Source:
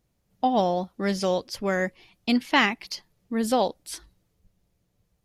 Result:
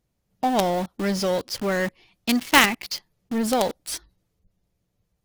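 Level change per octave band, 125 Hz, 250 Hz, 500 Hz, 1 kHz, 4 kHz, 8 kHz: +2.0, +1.5, +1.0, +1.5, +5.0, +9.0 decibels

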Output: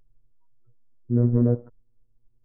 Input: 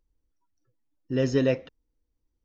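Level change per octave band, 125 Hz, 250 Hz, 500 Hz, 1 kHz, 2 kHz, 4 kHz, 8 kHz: +9.5 dB, +4.0 dB, −3.5 dB, −2.0 dB, below −20 dB, below −40 dB, can't be measured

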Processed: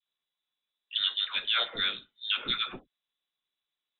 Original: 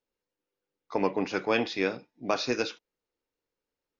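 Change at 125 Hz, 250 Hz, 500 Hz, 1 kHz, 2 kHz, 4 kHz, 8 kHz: −11.5 dB, −18.0 dB, −18.5 dB, −6.0 dB, −0.5 dB, +11.5 dB, can't be measured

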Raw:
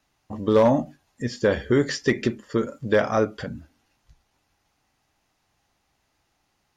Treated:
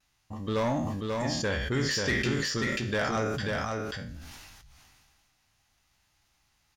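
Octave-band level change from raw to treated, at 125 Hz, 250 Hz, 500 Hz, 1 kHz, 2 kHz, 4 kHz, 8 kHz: −1.5 dB, −6.5 dB, −9.5 dB, −4.5 dB, 0.0 dB, +3.5 dB, can't be measured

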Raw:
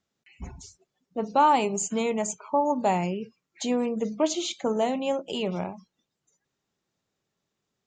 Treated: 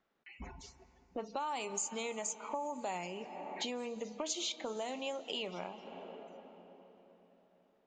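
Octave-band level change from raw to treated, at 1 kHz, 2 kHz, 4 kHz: −15.5, −8.0, −5.0 decibels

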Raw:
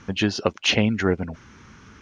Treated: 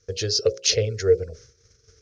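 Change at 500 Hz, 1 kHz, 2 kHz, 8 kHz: +5.0 dB, below −15 dB, −10.0 dB, can't be measured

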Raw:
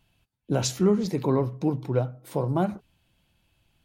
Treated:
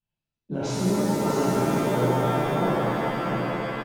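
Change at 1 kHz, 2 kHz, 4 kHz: +8.5, +12.5, +2.0 decibels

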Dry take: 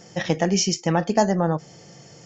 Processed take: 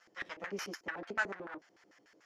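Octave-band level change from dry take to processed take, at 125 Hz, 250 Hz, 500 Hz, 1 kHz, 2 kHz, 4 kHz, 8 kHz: −32.0 dB, −25.5 dB, −21.5 dB, −18.5 dB, −4.5 dB, −20.5 dB, can't be measured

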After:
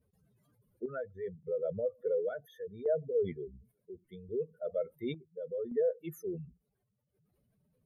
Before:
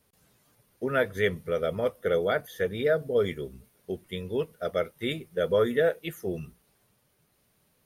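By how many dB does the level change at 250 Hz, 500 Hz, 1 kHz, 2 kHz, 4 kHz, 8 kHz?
−9.0 dB, −7.0 dB, below −15 dB, −20.5 dB, below −15 dB, can't be measured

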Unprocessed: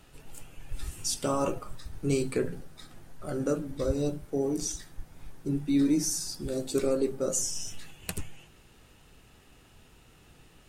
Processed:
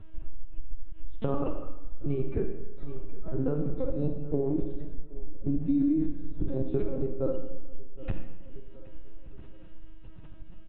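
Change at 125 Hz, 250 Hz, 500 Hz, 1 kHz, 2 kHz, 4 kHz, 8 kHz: +2.5 dB, 0.0 dB, −2.5 dB, −6.0 dB, below −10 dB, below −20 dB, below −40 dB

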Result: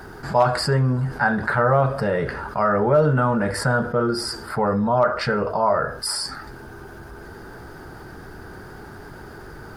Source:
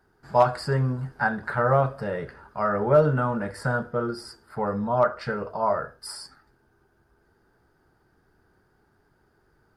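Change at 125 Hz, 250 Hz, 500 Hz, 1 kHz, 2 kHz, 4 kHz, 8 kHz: +5.0, +6.0, +3.5, +4.0, +6.0, +12.5, +12.5 decibels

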